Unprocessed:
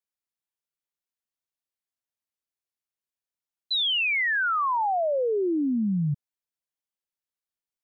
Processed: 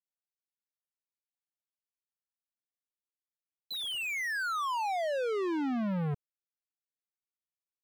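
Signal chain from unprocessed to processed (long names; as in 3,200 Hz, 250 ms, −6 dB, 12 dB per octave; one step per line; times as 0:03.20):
leveller curve on the samples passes 5
high-shelf EQ 3,600 Hz −10.5 dB
level −8.5 dB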